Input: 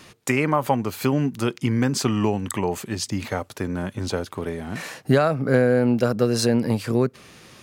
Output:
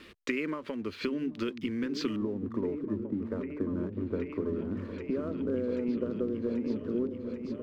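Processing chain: LPF 4200 Hz 24 dB/oct, from 2.16 s 1100 Hz; compressor, threshold -26 dBFS, peak gain reduction 13 dB; fixed phaser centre 320 Hz, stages 4; backlash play -53 dBFS; repeats that get brighter 0.785 s, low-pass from 200 Hz, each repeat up 1 oct, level -3 dB

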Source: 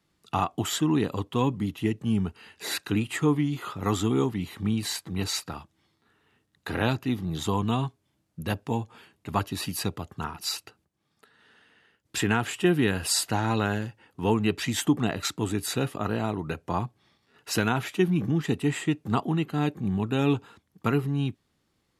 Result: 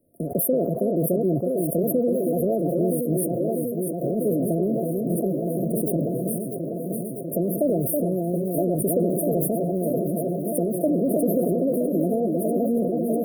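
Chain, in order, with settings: on a send: echo with dull and thin repeats by turns 0.536 s, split 1100 Hz, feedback 87%, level -7 dB; on the sum: dynamic EQ 8700 Hz, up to -7 dB, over -48 dBFS, Q 1.1; in parallel at -1.5 dB: limiter -17.5 dBFS, peak gain reduction 9 dB; on the sum: compressor, threshold -20 dBFS, peak gain reduction 7.5 dB; FFT band-reject 430–5400 Hz; wide varispeed 1.66×; sustainer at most 28 dB/s; gain +2 dB

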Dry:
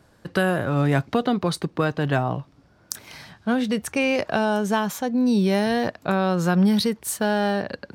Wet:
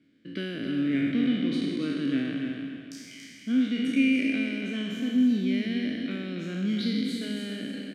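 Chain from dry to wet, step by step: spectral trails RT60 1.96 s; vowel filter i; on a send: feedback echo 0.282 s, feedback 33%, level -6 dB; on the sum: gain +2.5 dB

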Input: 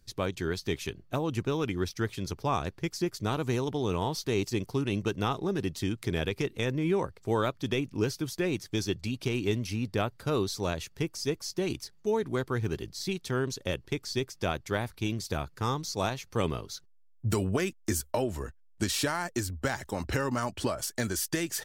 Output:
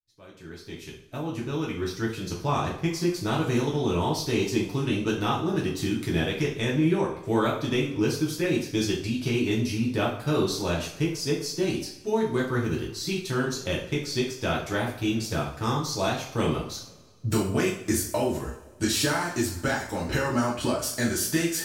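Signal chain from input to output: opening faded in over 2.61 s; two-slope reverb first 0.46 s, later 1.8 s, from -19 dB, DRR -4 dB; gain -1 dB

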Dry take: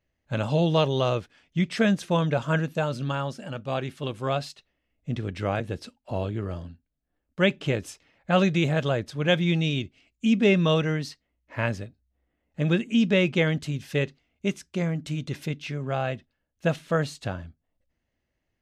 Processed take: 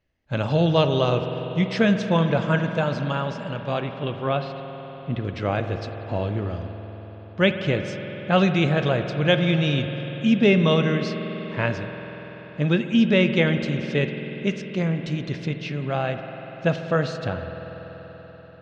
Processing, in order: LPF 5900 Hz 24 dB/oct, from 3.8 s 3500 Hz, from 5.25 s 5700 Hz; reverb RT60 5.1 s, pre-delay 48 ms, DRR 6.5 dB; gain +2.5 dB

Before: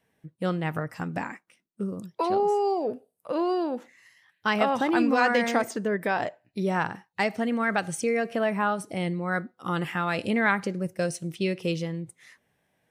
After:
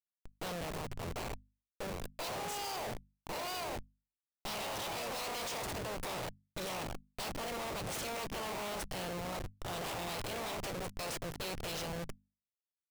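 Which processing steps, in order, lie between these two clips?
spectral limiter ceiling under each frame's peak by 28 dB; fixed phaser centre 680 Hz, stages 4; Schmitt trigger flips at -37.5 dBFS; notches 50/100/150/200/250 Hz; gain -6.5 dB

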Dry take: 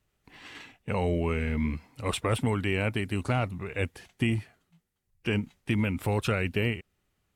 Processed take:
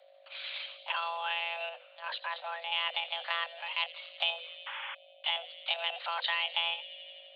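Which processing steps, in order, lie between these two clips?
monotone LPC vocoder at 8 kHz 170 Hz; tilt +4.5 dB/oct; thin delay 84 ms, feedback 72%, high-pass 2200 Hz, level -15 dB; 4.66–4.95 painted sound noise 300–3000 Hz -42 dBFS; compressor 1.5:1, threshold -49 dBFS, peak gain reduction 10 dB; hum 50 Hz, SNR 23 dB; frequency shift +500 Hz; 1.69–2.72 high shelf 2100 Hz -11 dB; gain +5.5 dB

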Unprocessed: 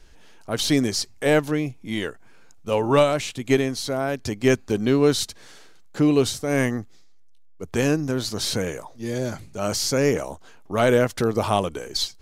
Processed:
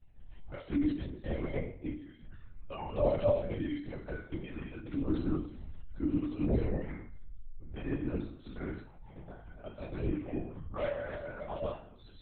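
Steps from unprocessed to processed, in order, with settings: reverse delay 0.157 s, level -0.5 dB; tilt shelf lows +3.5 dB, about 1300 Hz; level quantiser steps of 21 dB; metallic resonator 290 Hz, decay 0.57 s, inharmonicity 0.002; LPC vocoder at 8 kHz whisper; gain +2.5 dB

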